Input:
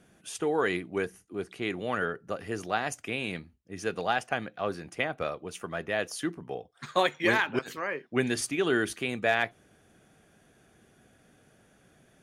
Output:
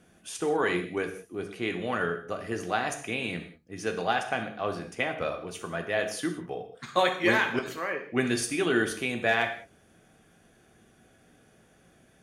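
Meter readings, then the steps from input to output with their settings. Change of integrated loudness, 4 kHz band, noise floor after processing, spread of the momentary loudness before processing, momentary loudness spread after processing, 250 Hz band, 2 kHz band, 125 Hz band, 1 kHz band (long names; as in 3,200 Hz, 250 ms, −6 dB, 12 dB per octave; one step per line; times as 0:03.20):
+1.5 dB, +1.5 dB, −61 dBFS, 11 LU, 11 LU, +1.5 dB, +1.5 dB, +1.0 dB, +1.5 dB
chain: reverb whose tail is shaped and stops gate 220 ms falling, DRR 4.5 dB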